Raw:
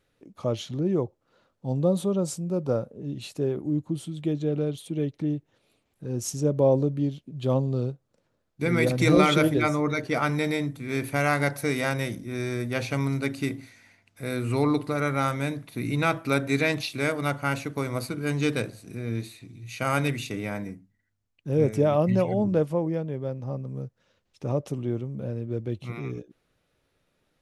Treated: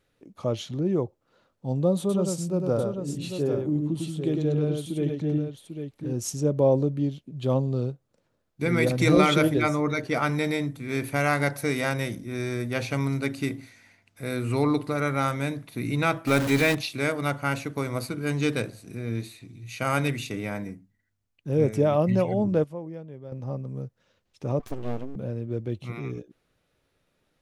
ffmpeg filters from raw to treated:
ffmpeg -i in.wav -filter_complex "[0:a]asettb=1/sr,asplit=3[link_01][link_02][link_03];[link_01]atrim=end=1.994[link_04];[link_02]atrim=start=1.99:end=6.13,asetpts=PTS-STARTPTS,afade=type=in:duration=0.004:curve=qsin,afade=type=out:start_time=4.136:duration=0.004:curve=qsin,aecho=1:1:101|796:0.631|0.422,atrim=end_sample=182574[link_05];[link_03]atrim=start=6.126[link_06];[link_04][link_05]acrossfade=duration=0.004:curve1=hsin:curve2=qsin[link_07];[link_07][link_06]acrossfade=duration=0.004:curve1=qsin:curve2=hsin,asettb=1/sr,asplit=3[link_08][link_09][link_10];[link_08]atrim=end=16.274[link_11];[link_09]atrim=start=16.27:end=16.75,asetpts=PTS-STARTPTS,afade=type=in:duration=0.004:curve=qsin,afade=type=out:start_time=0.476:duration=0.004:curve=qsin,aeval=exprs='val(0)+0.5*0.0562*sgn(val(0))':channel_layout=same[link_12];[link_10]atrim=start=16.746[link_13];[link_11][link_12]acrossfade=duration=0.004:curve1=hsin:curve2=qsin[link_14];[link_14][link_13]acrossfade=duration=0.004:curve1=qsin:curve2=hsin,asettb=1/sr,asplit=3[link_15][link_16][link_17];[link_15]atrim=end=24.594[link_18];[link_16]atrim=start=24.59:end=25.16,asetpts=PTS-STARTPTS,afade=type=in:duration=0.004:curve=qsin,afade=type=out:start_time=0.566:duration=0.004:curve=qsin,aeval=exprs='abs(val(0))':channel_layout=same[link_19];[link_17]atrim=start=25.156[link_20];[link_18][link_19]acrossfade=duration=0.004:curve1=hsin:curve2=qsin[link_21];[link_21][link_20]acrossfade=duration=0.004:curve1=qsin:curve2=hsin,asplit=3[link_22][link_23][link_24];[link_22]atrim=end=22.642[link_25];[link_23]atrim=start=22.638:end=23.322,asetpts=PTS-STARTPTS,volume=-10dB[link_26];[link_24]atrim=start=23.318[link_27];[link_25][link_26]acrossfade=duration=0.004:curve1=hsin:curve2=hsin[link_28];[link_28][link_27]acrossfade=duration=0.004:curve1=hsin:curve2=hsin" out.wav

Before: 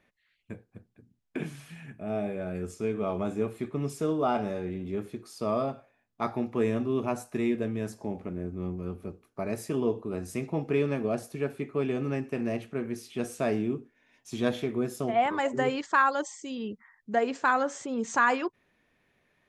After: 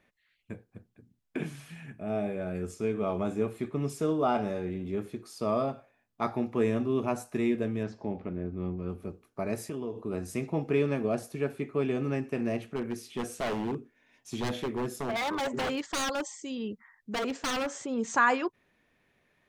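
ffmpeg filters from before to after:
ffmpeg -i in.wav -filter_complex "[0:a]asettb=1/sr,asplit=3[link_01][link_02][link_03];[link_01]atrim=end=7.834[link_04];[link_02]atrim=start=7.83:end=8.89,asetpts=PTS-STARTPTS,afade=type=in:duration=0.004:curve=qsin,afade=type=out:start_time=1.056:duration=0.004:curve=qsin,lowpass=frequency=4800:width=0.5412,lowpass=frequency=4800:width=1.3066[link_05];[link_03]atrim=start=8.886[link_06];[link_04][link_05]acrossfade=duration=0.004:curve1=hsin:curve2=qsin[link_07];[link_07][link_06]acrossfade=duration=0.004:curve1=qsin:curve2=hsin,asettb=1/sr,asplit=3[link_08][link_09][link_10];[link_08]atrim=end=9.564[link_11];[link_09]atrim=start=9.56:end=10.05,asetpts=PTS-STARTPTS,afade=type=in:duration=0.004:curve=qsin,afade=type=out:start_time=0.486:duration=0.004:curve=qsin,acompressor=threshold=-34dB:ratio=3:attack=3.2:release=140:knee=1:detection=peak[link_12];[link_10]atrim=start=10.046[link_13];[link_11][link_12]acrossfade=duration=0.004:curve1=hsin:curve2=qsin[link_14];[link_14][link_13]acrossfade=duration=0.004:curve1=qsin:curve2=hsin,asplit=3[link_15][link_16][link_17];[link_15]afade=type=out:start_time=12.75:duration=0.02[link_18];[link_16]aeval=exprs='0.0531*(abs(mod(val(0)/0.0531+3,4)-2)-1)':channel_layout=same,afade=type=in:start_time=12.75:duration=0.02,afade=type=out:start_time=17.82:duration=0.02[link_19];[link_17]afade=type=in:start_time=17.82:duration=0.02[link_20];[link_18][link_19][link_20]amix=inputs=3:normalize=0" out.wav

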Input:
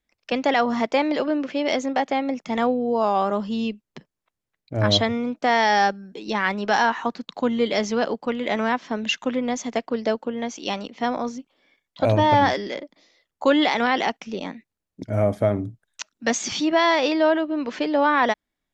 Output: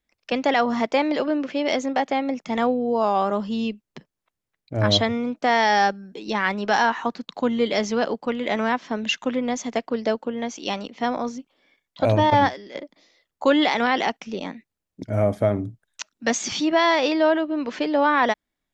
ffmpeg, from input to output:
ffmpeg -i in.wav -filter_complex "[0:a]asettb=1/sr,asplit=3[link_01][link_02][link_03];[link_01]atrim=end=12.304[link_04];[link_02]atrim=start=12.3:end=12.75,asetpts=PTS-STARTPTS,afade=type=in:duration=0.004:curve=qsin,afade=type=out:start_time=0.446:duration=0.004:curve=qsin,agate=range=-11dB:threshold=-19dB:ratio=16:release=100:detection=peak[link_05];[link_03]atrim=start=12.746[link_06];[link_04][link_05]acrossfade=duration=0.004:curve1=hsin:curve2=qsin[link_07];[link_07][link_06]acrossfade=duration=0.004:curve1=qsin:curve2=hsin" out.wav

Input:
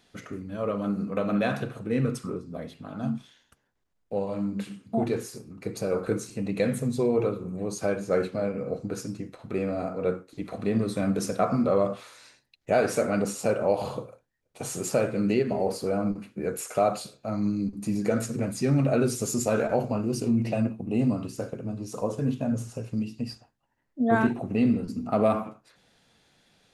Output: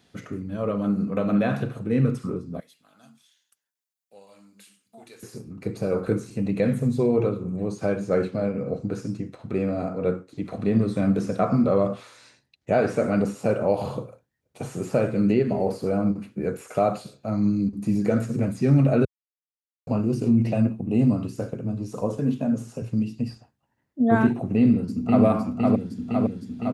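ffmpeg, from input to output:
ffmpeg -i in.wav -filter_complex "[0:a]asettb=1/sr,asplit=3[link_01][link_02][link_03];[link_01]atrim=end=2.604[link_04];[link_02]atrim=start=2.6:end=5.23,asetpts=PTS-STARTPTS,afade=type=in:duration=0.004:curve=qsin,afade=type=out:start_time=2.626:duration=0.004:curve=qsin,aderivative[link_05];[link_03]atrim=start=5.226[link_06];[link_04][link_05]acrossfade=duration=0.004:curve1=hsin:curve2=qsin[link_07];[link_07][link_06]acrossfade=duration=0.004:curve1=qsin:curve2=hsin,asettb=1/sr,asplit=3[link_08][link_09][link_10];[link_08]atrim=end=7.204[link_11];[link_09]atrim=start=7.2:end=13.06,asetpts=PTS-STARTPTS,afade=type=in:duration=0.004:curve=qsin,afade=type=out:start_time=5.856:duration=0.004:curve=qsin,lowpass=9900[link_12];[link_10]atrim=start=13.056[link_13];[link_11][link_12]acrossfade=duration=0.004:curve1=hsin:curve2=qsin[link_14];[link_14][link_13]acrossfade=duration=0.004:curve1=qsin:curve2=hsin,asettb=1/sr,asplit=3[link_15][link_16][link_17];[link_15]atrim=end=22.174[link_18];[link_16]atrim=start=22.17:end=22.82,asetpts=PTS-STARTPTS,afade=type=in:duration=0.004:curve=qsin,afade=type=out:start_time=0.646:duration=0.004:curve=qsin,highpass=frequency=150:width=0.5412,highpass=frequency=150:width=1.3066[link_19];[link_17]atrim=start=22.816[link_20];[link_18][link_19]acrossfade=duration=0.004:curve1=hsin:curve2=qsin[link_21];[link_21][link_20]acrossfade=duration=0.004:curve1=qsin:curve2=hsin,asplit=2[link_22][link_23];[link_23]afade=type=in:start_time=24.57:duration=0.01,afade=type=out:start_time=25.24:duration=0.01,aecho=0:1:510|1020|1530|2040|2550|3060|3570|4080|4590|5100|5610|6120:0.794328|0.595746|0.44681|0.335107|0.25133|0.188498|0.141373|0.10603|0.0795225|0.0596419|0.0447314|0.0335486[link_24];[link_22][link_24]amix=inputs=2:normalize=0,asplit=3[link_25][link_26][link_27];[link_25]atrim=end=19.05,asetpts=PTS-STARTPTS,afade=type=out:start_time=19.046:duration=0.004:curve=hsin[link_28];[link_26]atrim=start=19.05:end=19.87,asetpts=PTS-STARTPTS,volume=0[link_29];[link_27]atrim=start=19.87,asetpts=PTS-STARTPTS,afade=type=in:duration=0.004:curve=hsin[link_30];[link_28][link_29][link_30]concat=n=3:v=0:a=1,acrossover=split=2900[link_31][link_32];[link_32]acompressor=threshold=-46dB:ratio=4:attack=1:release=60[link_33];[link_31][link_33]amix=inputs=2:normalize=0,highpass=73,lowshelf=frequency=270:gain=8" out.wav

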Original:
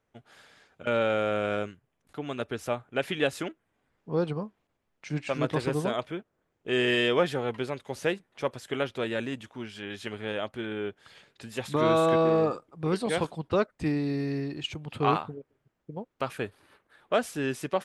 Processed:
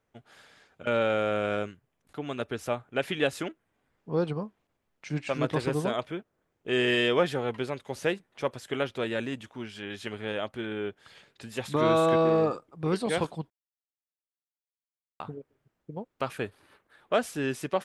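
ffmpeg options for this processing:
ffmpeg -i in.wav -filter_complex "[0:a]asplit=3[link_01][link_02][link_03];[link_01]atrim=end=13.5,asetpts=PTS-STARTPTS,afade=type=out:start_time=13.496:duration=0.004:curve=hsin[link_04];[link_02]atrim=start=13.5:end=15.2,asetpts=PTS-STARTPTS,volume=0[link_05];[link_03]atrim=start=15.2,asetpts=PTS-STARTPTS,afade=type=in:duration=0.004:curve=hsin[link_06];[link_04][link_05][link_06]concat=n=3:v=0:a=1" out.wav

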